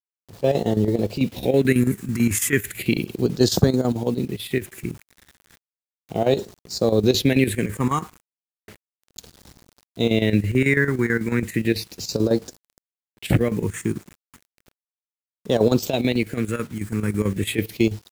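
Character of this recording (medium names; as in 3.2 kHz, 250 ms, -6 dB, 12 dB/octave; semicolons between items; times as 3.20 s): phasing stages 4, 0.34 Hz, lowest notch 600–2300 Hz; a quantiser's noise floor 8-bit, dither none; chopped level 9.1 Hz, depth 65%, duty 70%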